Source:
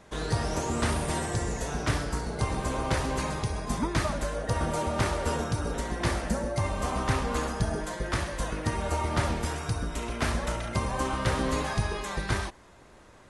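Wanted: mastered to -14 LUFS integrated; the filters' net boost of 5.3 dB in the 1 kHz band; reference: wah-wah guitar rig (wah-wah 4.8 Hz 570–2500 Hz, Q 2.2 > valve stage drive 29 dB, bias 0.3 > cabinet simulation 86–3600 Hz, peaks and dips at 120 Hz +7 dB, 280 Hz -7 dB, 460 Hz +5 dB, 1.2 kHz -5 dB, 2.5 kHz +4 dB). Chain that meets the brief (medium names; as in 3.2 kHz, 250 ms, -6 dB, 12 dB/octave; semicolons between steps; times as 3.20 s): peaking EQ 1 kHz +8 dB; wah-wah 4.8 Hz 570–2500 Hz, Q 2.2; valve stage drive 29 dB, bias 0.3; cabinet simulation 86–3600 Hz, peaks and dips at 120 Hz +7 dB, 280 Hz -7 dB, 460 Hz +5 dB, 1.2 kHz -5 dB, 2.5 kHz +4 dB; trim +23.5 dB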